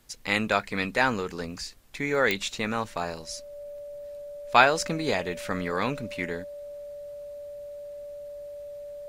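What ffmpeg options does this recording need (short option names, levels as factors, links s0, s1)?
-af "adeclick=t=4,bandreject=f=580:w=30"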